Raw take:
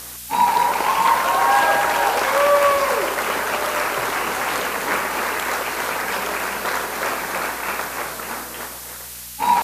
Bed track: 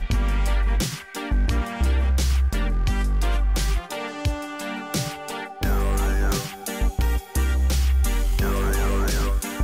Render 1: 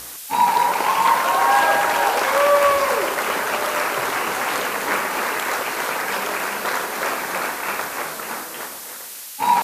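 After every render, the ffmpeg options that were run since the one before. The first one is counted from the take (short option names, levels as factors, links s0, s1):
-af "bandreject=f=60:t=h:w=4,bandreject=f=120:t=h:w=4,bandreject=f=180:t=h:w=4,bandreject=f=240:t=h:w=4"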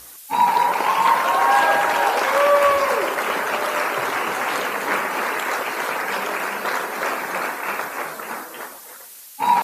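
-af "afftdn=nr=9:nf=-35"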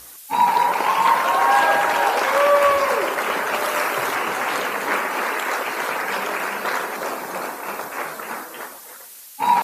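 -filter_complex "[0:a]asettb=1/sr,asplit=3[s0][s1][s2];[s0]atrim=end=3.544[s3];[s1]atrim=start=3.54:end=4.15,asetpts=PTS-STARTPTS,afade=t=in:d=0.004:c=qsin,afade=t=out:st=0.606:d=0.004:c=qsin,highshelf=f=5800:g=5[s4];[s2]atrim=start=4.146[s5];[s3][s4]acrossfade=d=0.004:c1=hsin:c2=qsin[s6];[s6][s5]acrossfade=d=0.004:c1=qsin:c2=hsin,asettb=1/sr,asplit=3[s7][s8][s9];[s7]atrim=end=4.914[s10];[s8]atrim=start=4.91:end=5.66,asetpts=PTS-STARTPTS,afade=t=in:d=0.004:c=qsin,afade=t=out:st=0.746:d=0.004:c=qsin,highpass=f=190:w=0.5412,highpass=f=190:w=1.3066[s11];[s9]atrim=start=5.656[s12];[s10][s11]acrossfade=d=0.004:c1=hsin:c2=qsin[s13];[s13][s12]acrossfade=d=0.004:c1=qsin:c2=hsin,asettb=1/sr,asplit=3[s14][s15][s16];[s14]atrim=end=6.964[s17];[s15]atrim=start=6.96:end=7.92,asetpts=PTS-STARTPTS,afade=t=in:d=0.004:c=qsin,afade=t=out:st=0.956:d=0.004:c=qsin,equalizer=f=2000:t=o:w=1.5:g=-7.5[s18];[s16]atrim=start=7.916[s19];[s17][s18]acrossfade=d=0.004:c1=hsin:c2=qsin[s20];[s20][s19]acrossfade=d=0.004:c1=qsin:c2=hsin"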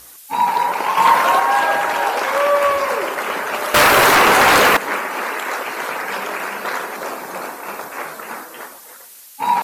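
-filter_complex "[0:a]asettb=1/sr,asplit=3[s0][s1][s2];[s0]atrim=end=0.974[s3];[s1]atrim=start=0.97:end=1.4,asetpts=PTS-STARTPTS,afade=t=in:d=0.004:c=qsin,afade=t=out:st=0.426:d=0.004:c=qsin,acontrast=27[s4];[s2]atrim=start=1.396[s5];[s3][s4]acrossfade=d=0.004:c1=hsin:c2=qsin[s6];[s6][s5]acrossfade=d=0.004:c1=qsin:c2=hsin,asettb=1/sr,asplit=3[s7][s8][s9];[s7]atrim=end=3.744[s10];[s8]atrim=start=3.74:end=4.77,asetpts=PTS-STARTPTS,afade=t=in:d=0.004:c=qsin,afade=t=out:st=1.026:d=0.004:c=qsin,aeval=exprs='0.447*sin(PI/2*3.55*val(0)/0.447)':c=same[s11];[s9]atrim=start=4.766[s12];[s10][s11]acrossfade=d=0.004:c1=hsin:c2=qsin[s13];[s13][s12]acrossfade=d=0.004:c1=qsin:c2=hsin"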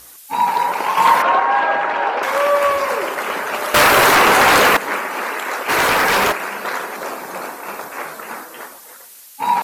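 -filter_complex "[0:a]asettb=1/sr,asplit=3[s0][s1][s2];[s0]atrim=end=1.224[s3];[s1]atrim=start=1.22:end=2.23,asetpts=PTS-STARTPTS,afade=t=in:d=0.004:c=qsin,afade=t=out:st=1.006:d=0.004:c=qsin,highpass=160,lowpass=2800[s4];[s2]atrim=start=2.226[s5];[s3][s4]acrossfade=d=0.004:c1=hsin:c2=qsin[s6];[s6][s5]acrossfade=d=0.004:c1=qsin:c2=hsin,asplit=3[s7][s8][s9];[s7]afade=t=out:st=5.68:d=0.02[s10];[s8]aeval=exprs='0.282*sin(PI/2*2.82*val(0)/0.282)':c=same,afade=t=in:st=5.68:d=0.02,afade=t=out:st=6.31:d=0.02[s11];[s9]afade=t=in:st=6.31:d=0.02[s12];[s10][s11][s12]amix=inputs=3:normalize=0"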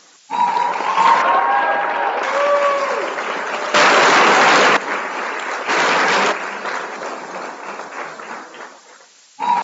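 -af "afftfilt=real='re*between(b*sr/4096,140,7500)':imag='im*between(b*sr/4096,140,7500)':win_size=4096:overlap=0.75"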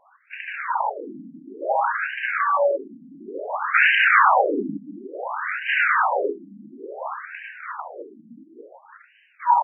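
-af "afftfilt=real='re*between(b*sr/1024,210*pow(2200/210,0.5+0.5*sin(2*PI*0.57*pts/sr))/1.41,210*pow(2200/210,0.5+0.5*sin(2*PI*0.57*pts/sr))*1.41)':imag='im*between(b*sr/1024,210*pow(2200/210,0.5+0.5*sin(2*PI*0.57*pts/sr))/1.41,210*pow(2200/210,0.5+0.5*sin(2*PI*0.57*pts/sr))*1.41)':win_size=1024:overlap=0.75"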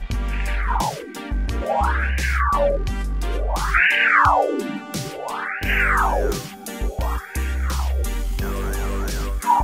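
-filter_complex "[1:a]volume=0.75[s0];[0:a][s0]amix=inputs=2:normalize=0"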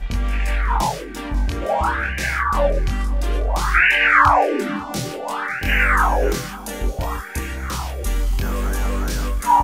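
-filter_complex "[0:a]asplit=2[s0][s1];[s1]adelay=24,volume=0.708[s2];[s0][s2]amix=inputs=2:normalize=0,aecho=1:1:541:0.106"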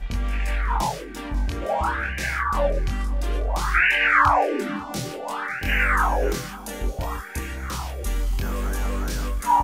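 -af "volume=0.631"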